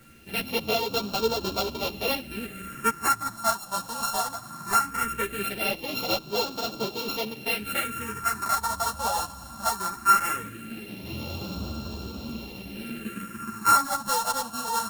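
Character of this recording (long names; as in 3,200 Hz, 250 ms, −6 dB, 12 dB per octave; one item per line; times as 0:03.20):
a buzz of ramps at a fixed pitch in blocks of 32 samples
phaser sweep stages 4, 0.19 Hz, lowest notch 370–1,900 Hz
a quantiser's noise floor 10 bits, dither none
a shimmering, thickened sound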